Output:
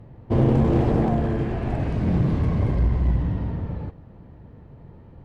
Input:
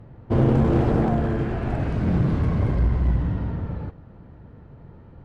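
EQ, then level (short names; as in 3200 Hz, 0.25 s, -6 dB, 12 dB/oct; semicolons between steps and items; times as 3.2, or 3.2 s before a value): bell 1400 Hz -6.5 dB 0.34 oct; 0.0 dB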